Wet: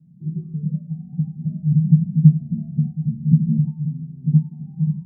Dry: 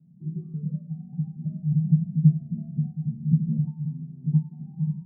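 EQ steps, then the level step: bass shelf 150 Hz +10.5 dB; dynamic bell 240 Hz, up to +6 dB, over -32 dBFS, Q 2.3; 0.0 dB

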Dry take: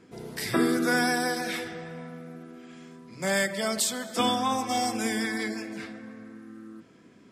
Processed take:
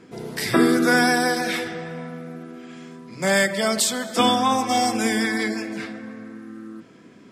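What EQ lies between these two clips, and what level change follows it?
peaking EQ 65 Hz -9.5 dB 0.7 oct; treble shelf 8.4 kHz -4 dB; +7.0 dB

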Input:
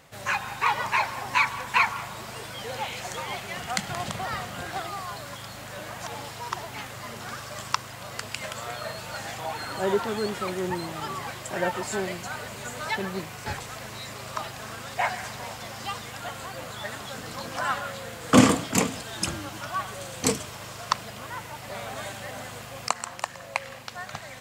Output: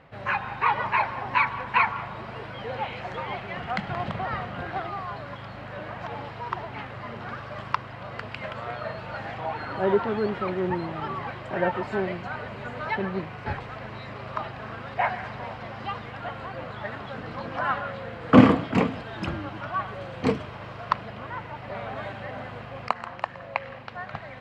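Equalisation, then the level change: distance through air 390 m; treble shelf 8.6 kHz -6.5 dB; band-stop 3.5 kHz, Q 25; +3.5 dB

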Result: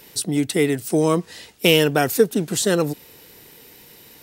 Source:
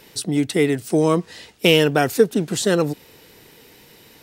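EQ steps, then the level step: treble shelf 9 kHz +10 dB; -1.0 dB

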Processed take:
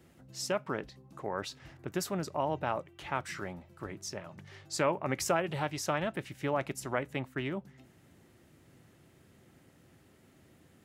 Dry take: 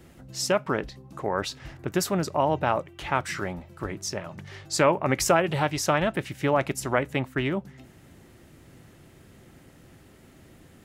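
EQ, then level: high-pass 72 Hz; -8.5 dB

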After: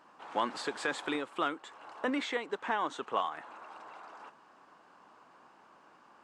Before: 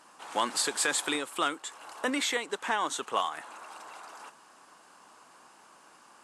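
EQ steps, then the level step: tape spacing loss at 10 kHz 25 dB; 0.0 dB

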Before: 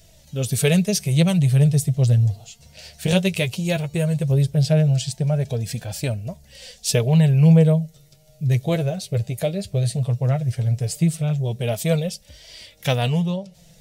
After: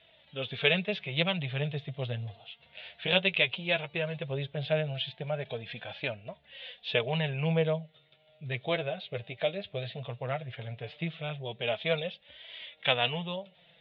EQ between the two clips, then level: high-pass 1.4 kHz 6 dB/octave; Chebyshev low-pass 3.6 kHz, order 6; +2.5 dB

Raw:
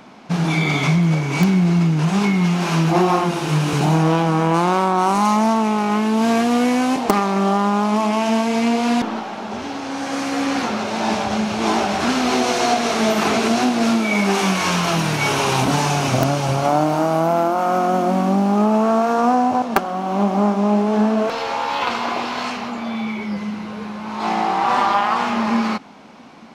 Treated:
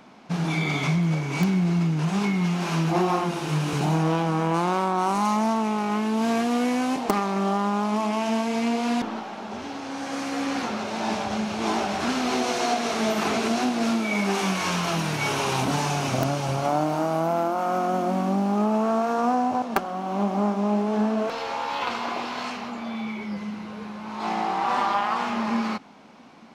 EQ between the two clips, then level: hum notches 60/120 Hz; -6.5 dB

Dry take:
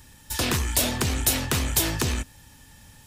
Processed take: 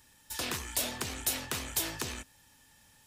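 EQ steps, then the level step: bass shelf 230 Hz -11 dB; -8.5 dB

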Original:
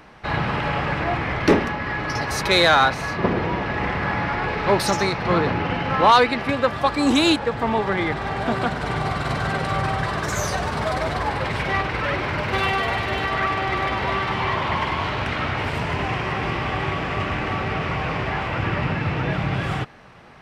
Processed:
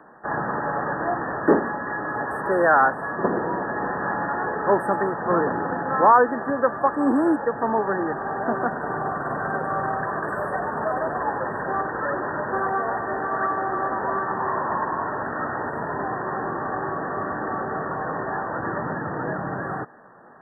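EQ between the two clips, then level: brick-wall FIR band-stop 1.9–7.7 kHz; three-band isolator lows -20 dB, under 190 Hz, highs -20 dB, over 2.4 kHz; 0.0 dB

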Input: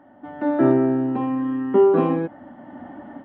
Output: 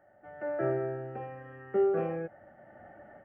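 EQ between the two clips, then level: static phaser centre 1 kHz, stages 6; -7.0 dB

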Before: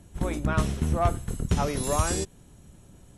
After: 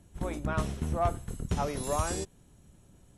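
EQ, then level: dynamic bell 740 Hz, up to +4 dB, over -37 dBFS, Q 0.91; -6.5 dB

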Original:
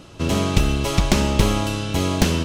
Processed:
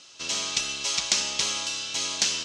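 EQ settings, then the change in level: band-pass filter 6.3 kHz, Q 1.5; distance through air 120 m; treble shelf 5.8 kHz +10.5 dB; +8.5 dB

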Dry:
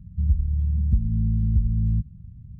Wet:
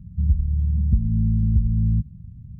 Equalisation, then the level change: peaking EQ 220 Hz +4 dB 2.8 oct; 0.0 dB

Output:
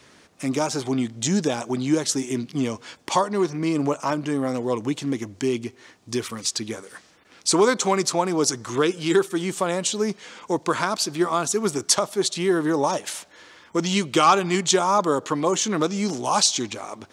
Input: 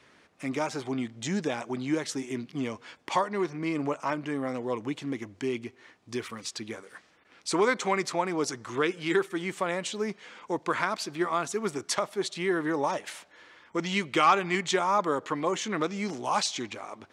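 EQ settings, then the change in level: dynamic bell 2 kHz, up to -6 dB, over -45 dBFS, Q 2.8; FFT filter 120 Hz 0 dB, 2.2 kHz -5 dB, 6.2 kHz +4 dB; +9.0 dB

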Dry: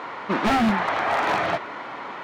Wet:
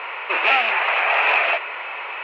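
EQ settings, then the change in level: steep high-pass 410 Hz 36 dB/octave; resonant low-pass 2.6 kHz, resonance Q 9.3; 0.0 dB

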